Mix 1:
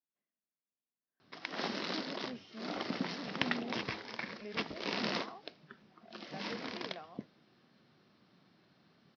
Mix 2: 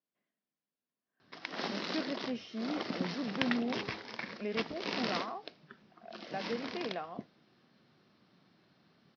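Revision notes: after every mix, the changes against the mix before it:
speech +9.0 dB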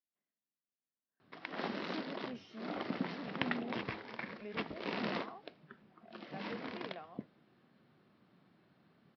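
speech -9.5 dB; background: add distance through air 270 m

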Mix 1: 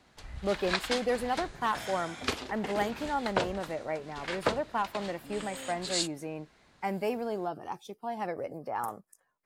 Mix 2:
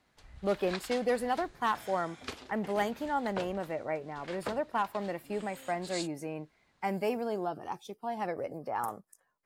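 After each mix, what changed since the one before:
background -9.5 dB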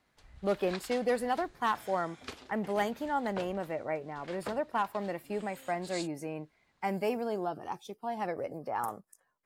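reverb: off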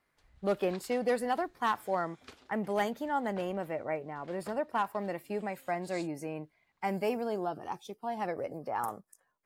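background -8.5 dB

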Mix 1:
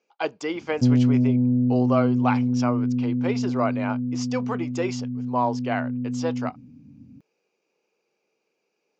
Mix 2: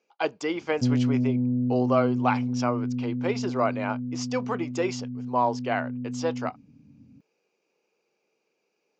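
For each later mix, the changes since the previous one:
background -4.5 dB; reverb: off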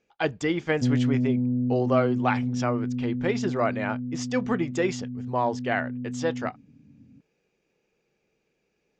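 speech: remove cabinet simulation 340–5300 Hz, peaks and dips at 1 kHz +4 dB, 1.8 kHz -9 dB, 3.5 kHz -7 dB; master: add distance through air 120 m

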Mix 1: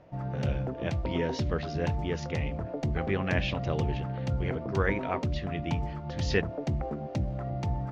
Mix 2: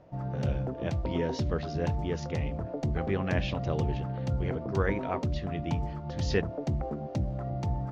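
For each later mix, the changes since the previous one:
master: add peaking EQ 2.3 kHz -5 dB 1.4 oct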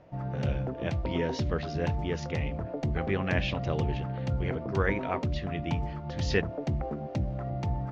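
background: add treble shelf 8.1 kHz -8.5 dB; master: add peaking EQ 2.3 kHz +5 dB 1.4 oct

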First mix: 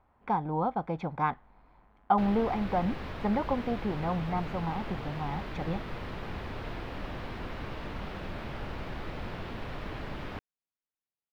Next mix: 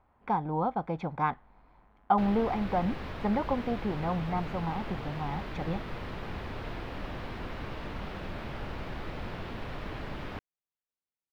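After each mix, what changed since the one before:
no change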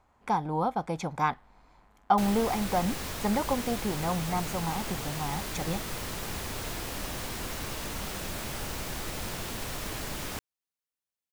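master: remove distance through air 370 m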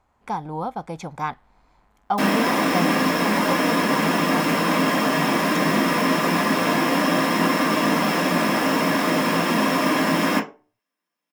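reverb: on, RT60 0.35 s

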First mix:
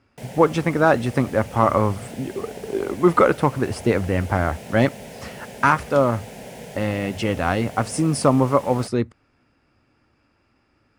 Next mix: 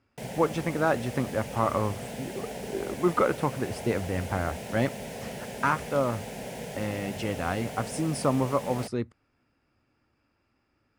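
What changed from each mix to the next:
speech -8.5 dB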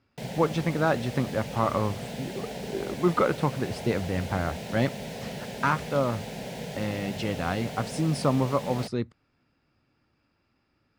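master: add fifteen-band graphic EQ 160 Hz +5 dB, 4 kHz +6 dB, 10 kHz -5 dB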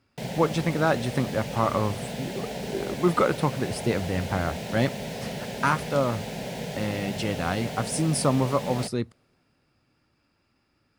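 speech: remove distance through air 83 m; reverb: on

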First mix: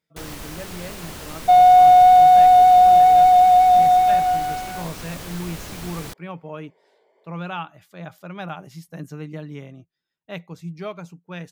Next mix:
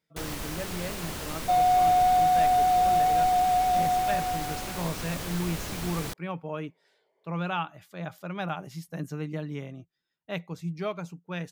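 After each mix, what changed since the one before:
second sound -11.0 dB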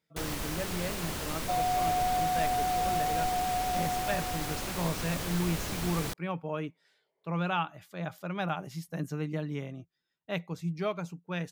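second sound -8.0 dB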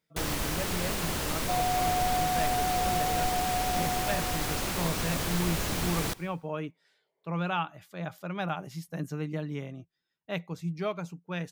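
first sound +3.5 dB; reverb: on, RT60 0.70 s

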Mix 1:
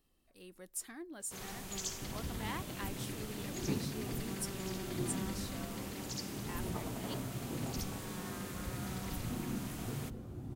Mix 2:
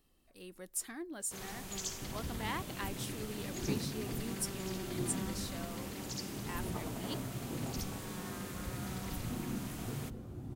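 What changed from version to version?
speech +3.5 dB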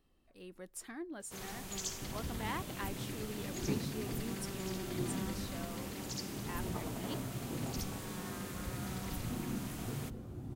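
speech: add treble shelf 4.9 kHz -12 dB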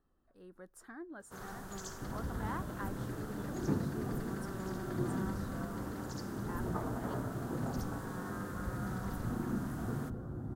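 speech -3.5 dB; second sound: send on; master: add resonant high shelf 1.9 kHz -7.5 dB, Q 3

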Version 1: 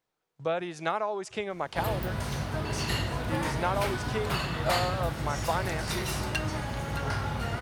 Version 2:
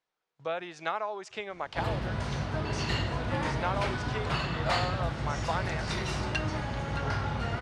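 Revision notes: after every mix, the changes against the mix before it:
speech: add bass shelf 460 Hz -11 dB; master: add Bessel low-pass 5.3 kHz, order 4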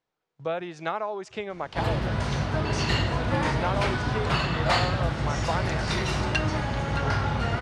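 speech: add bass shelf 460 Hz +11 dB; background +5.5 dB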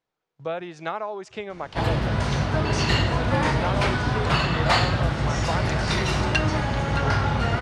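background +3.5 dB

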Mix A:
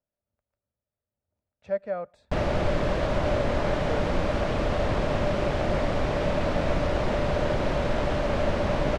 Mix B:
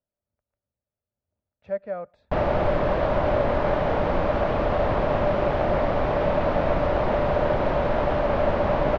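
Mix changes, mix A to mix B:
background: add peaking EQ 840 Hz +7 dB 1.8 oct; master: add distance through air 180 m

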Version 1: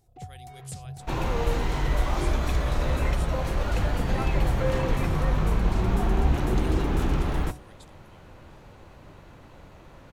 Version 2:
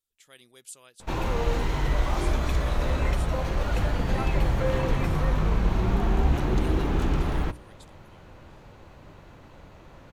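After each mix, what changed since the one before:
first sound: muted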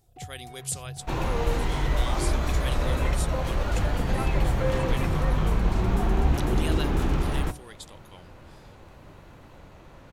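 speech +11.5 dB; first sound: unmuted

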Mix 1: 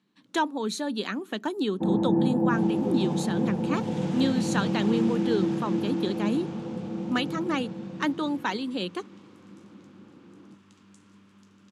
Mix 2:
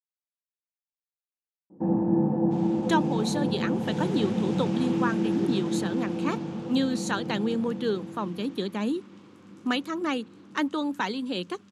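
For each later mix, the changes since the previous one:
speech: entry +2.55 s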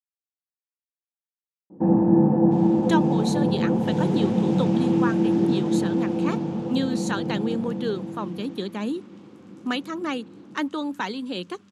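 first sound +6.0 dB

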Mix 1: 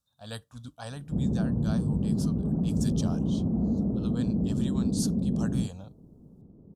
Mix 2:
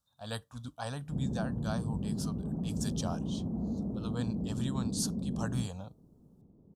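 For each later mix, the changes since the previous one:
background -8.0 dB; master: add peaking EQ 940 Hz +4.5 dB 1 oct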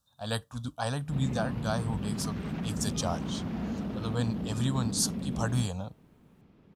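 speech +6.5 dB; background: remove Gaussian low-pass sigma 12 samples

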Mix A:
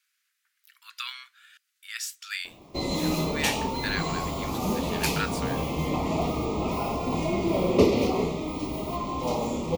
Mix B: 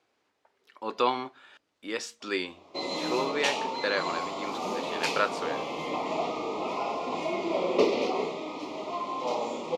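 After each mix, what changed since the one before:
speech: remove steep high-pass 1.4 kHz 48 dB/octave; master: add band-pass 420–5100 Hz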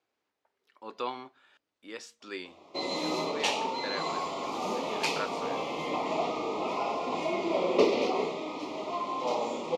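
speech -9.0 dB

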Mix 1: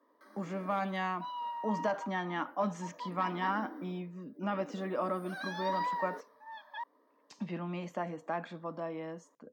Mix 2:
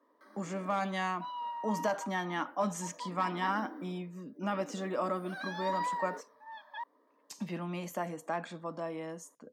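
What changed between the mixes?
speech: remove distance through air 180 m; master: add treble shelf 8.1 kHz -5.5 dB

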